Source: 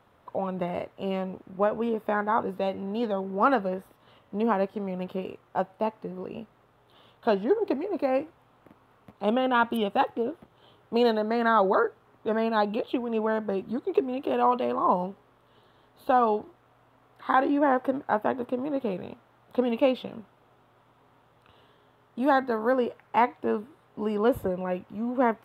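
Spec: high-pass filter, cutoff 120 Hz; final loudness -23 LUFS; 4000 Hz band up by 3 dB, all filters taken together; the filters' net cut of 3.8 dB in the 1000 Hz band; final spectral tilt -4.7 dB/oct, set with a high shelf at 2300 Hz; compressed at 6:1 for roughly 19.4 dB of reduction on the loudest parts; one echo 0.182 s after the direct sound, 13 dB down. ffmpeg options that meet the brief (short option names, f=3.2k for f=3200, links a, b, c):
-af "highpass=120,equalizer=f=1k:t=o:g=-4.5,highshelf=f=2.3k:g=-5,equalizer=f=4k:t=o:g=9,acompressor=threshold=-40dB:ratio=6,aecho=1:1:182:0.224,volume=21dB"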